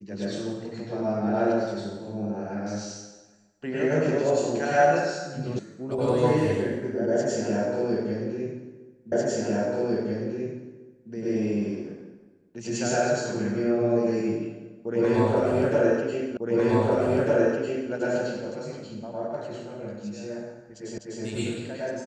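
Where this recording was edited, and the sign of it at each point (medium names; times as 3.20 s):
5.59 s: sound stops dead
9.12 s: repeat of the last 2 s
16.37 s: repeat of the last 1.55 s
20.98 s: repeat of the last 0.25 s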